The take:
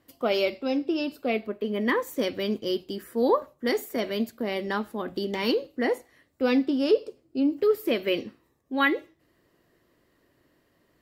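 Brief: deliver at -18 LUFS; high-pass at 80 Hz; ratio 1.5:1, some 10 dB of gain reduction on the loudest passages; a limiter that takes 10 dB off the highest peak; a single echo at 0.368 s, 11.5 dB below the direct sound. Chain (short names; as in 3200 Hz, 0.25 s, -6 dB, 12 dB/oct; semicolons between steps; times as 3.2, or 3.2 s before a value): HPF 80 Hz; compressor 1.5:1, threshold -45 dBFS; limiter -30 dBFS; echo 0.368 s -11.5 dB; gain +21.5 dB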